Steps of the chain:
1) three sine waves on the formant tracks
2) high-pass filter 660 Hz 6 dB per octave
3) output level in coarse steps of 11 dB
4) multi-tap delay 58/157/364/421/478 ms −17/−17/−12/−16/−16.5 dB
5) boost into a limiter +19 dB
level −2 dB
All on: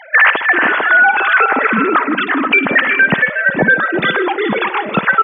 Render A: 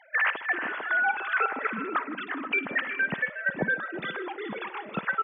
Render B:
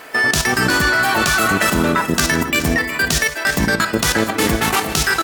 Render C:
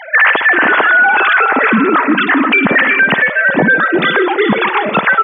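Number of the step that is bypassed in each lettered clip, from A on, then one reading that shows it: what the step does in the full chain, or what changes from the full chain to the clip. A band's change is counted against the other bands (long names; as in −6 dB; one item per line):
5, change in crest factor +5.0 dB
1, 125 Hz band +9.5 dB
3, change in crest factor −2.0 dB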